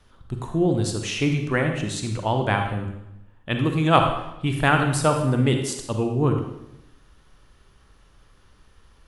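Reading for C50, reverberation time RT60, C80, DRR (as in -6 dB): 5.0 dB, 0.85 s, 7.5 dB, 3.5 dB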